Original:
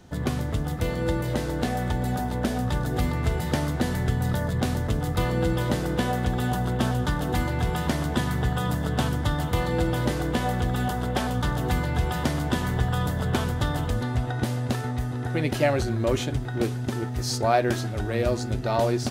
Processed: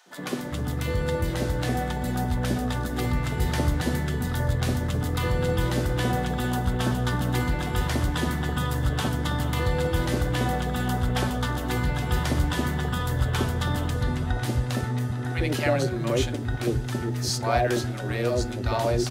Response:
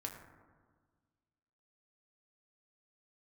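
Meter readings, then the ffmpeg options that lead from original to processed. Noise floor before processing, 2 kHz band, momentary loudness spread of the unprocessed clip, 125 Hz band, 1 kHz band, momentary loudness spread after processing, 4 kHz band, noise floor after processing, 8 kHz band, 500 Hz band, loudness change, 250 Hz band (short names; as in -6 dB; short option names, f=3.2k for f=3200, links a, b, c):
-30 dBFS, +1.0 dB, 4 LU, 0.0 dB, -1.0 dB, 3 LU, +1.5 dB, -31 dBFS, +1.5 dB, -1.0 dB, 0.0 dB, -1.0 dB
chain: -filter_complex "[0:a]bandreject=f=110.5:t=h:w=4,bandreject=f=221:t=h:w=4,bandreject=f=331.5:t=h:w=4,bandreject=f=442:t=h:w=4,bandreject=f=552.5:t=h:w=4,bandreject=f=663:t=h:w=4,acontrast=87,acrossover=split=190|740[a][b][c];[b]adelay=60[d];[a]adelay=400[e];[e][d][c]amix=inputs=3:normalize=0,volume=-5.5dB"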